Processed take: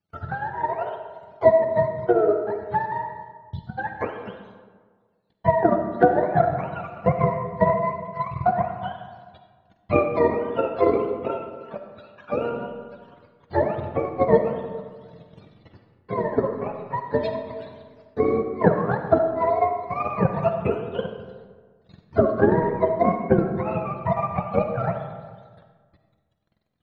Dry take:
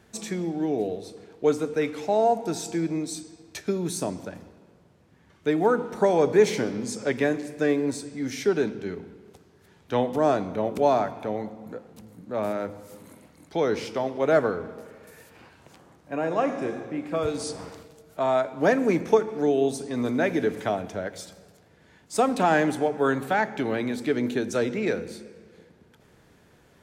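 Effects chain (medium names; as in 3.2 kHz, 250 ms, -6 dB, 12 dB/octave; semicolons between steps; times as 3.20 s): spectrum inverted on a logarithmic axis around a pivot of 540 Hz; time-frequency box 3.14–3.78 s, 230–2900 Hz -18 dB; gate -54 dBFS, range -25 dB; peaking EQ 3.9 kHz +9 dB 0.45 oct; transient shaper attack +10 dB, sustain -12 dB; algorithmic reverb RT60 1.6 s, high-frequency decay 0.5×, pre-delay 15 ms, DRR 5.5 dB; trim -1 dB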